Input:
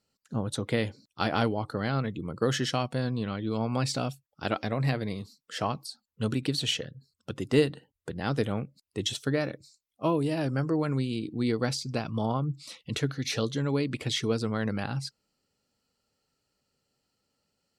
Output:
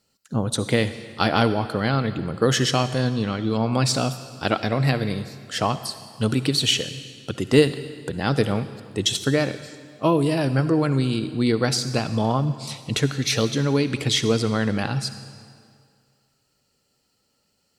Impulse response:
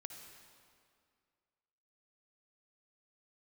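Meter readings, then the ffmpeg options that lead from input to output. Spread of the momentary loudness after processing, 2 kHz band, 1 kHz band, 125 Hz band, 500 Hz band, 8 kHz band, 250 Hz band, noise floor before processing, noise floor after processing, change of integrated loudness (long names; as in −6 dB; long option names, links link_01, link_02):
11 LU, +8.0 dB, +7.5 dB, +7.5 dB, +7.0 dB, +10.5 dB, +7.0 dB, −83 dBFS, −70 dBFS, +7.5 dB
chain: -filter_complex "[0:a]asplit=2[link_01][link_02];[1:a]atrim=start_sample=2205,highshelf=frequency=3300:gain=9[link_03];[link_02][link_03]afir=irnorm=-1:irlink=0,volume=-0.5dB[link_04];[link_01][link_04]amix=inputs=2:normalize=0,volume=3.5dB"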